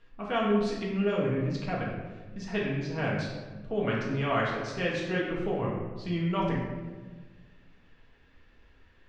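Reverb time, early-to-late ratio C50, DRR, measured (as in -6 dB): 1.4 s, 1.5 dB, -5.0 dB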